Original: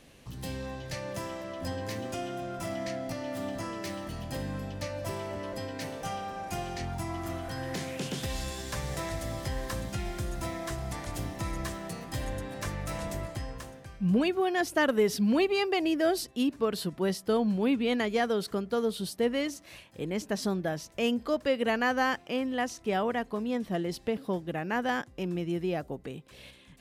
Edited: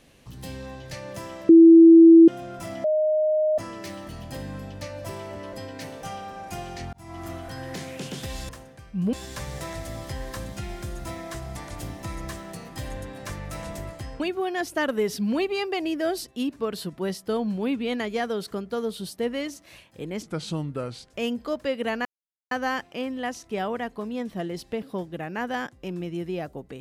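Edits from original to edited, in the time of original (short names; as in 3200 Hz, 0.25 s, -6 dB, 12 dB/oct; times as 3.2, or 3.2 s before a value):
1.49–2.28 bleep 330 Hz -7 dBFS
2.84–3.58 bleep 618 Hz -18.5 dBFS
6.93–7.23 fade in
13.56–14.2 move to 8.49
20.23–20.95 speed 79%
21.86 insert silence 0.46 s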